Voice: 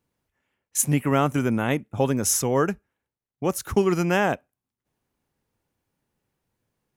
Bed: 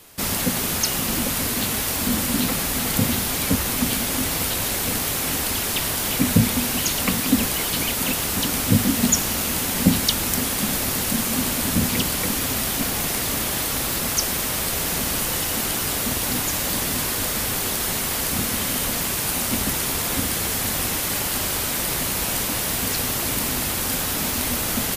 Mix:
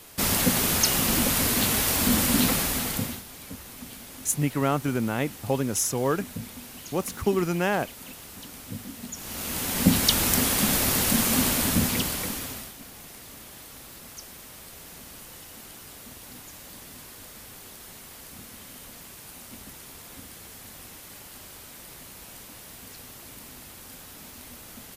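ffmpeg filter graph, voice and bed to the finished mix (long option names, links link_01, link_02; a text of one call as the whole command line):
ffmpeg -i stem1.wav -i stem2.wav -filter_complex "[0:a]adelay=3500,volume=-3.5dB[link_01];[1:a]volume=19.5dB,afade=type=out:start_time=2.46:duration=0.77:silence=0.105925,afade=type=in:start_time=9.15:duration=1.03:silence=0.105925,afade=type=out:start_time=11.41:duration=1.33:silence=0.0944061[link_02];[link_01][link_02]amix=inputs=2:normalize=0" out.wav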